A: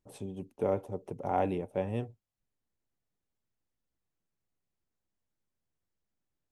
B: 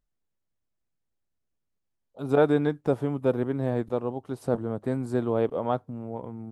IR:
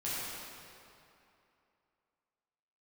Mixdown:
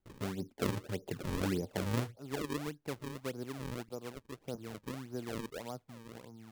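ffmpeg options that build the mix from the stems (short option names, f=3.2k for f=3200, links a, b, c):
-filter_complex "[0:a]volume=2dB[a];[1:a]volume=-14dB[b];[a][b]amix=inputs=2:normalize=0,highshelf=f=6.8k:g=-8.5,acrossover=split=380|3000[c][d][e];[d]acompressor=threshold=-41dB:ratio=6[f];[c][f][e]amix=inputs=3:normalize=0,acrusher=samples=36:mix=1:aa=0.000001:lfo=1:lforange=57.6:lforate=1.7"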